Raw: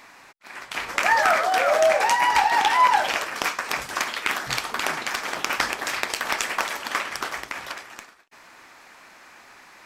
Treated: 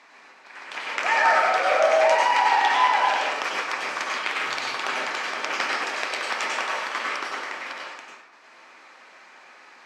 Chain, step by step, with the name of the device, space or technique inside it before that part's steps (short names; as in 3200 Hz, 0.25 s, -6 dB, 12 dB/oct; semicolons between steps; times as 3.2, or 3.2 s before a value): supermarket ceiling speaker (BPF 290–5800 Hz; reverb RT60 0.80 s, pre-delay 90 ms, DRR -3 dB); gain -4.5 dB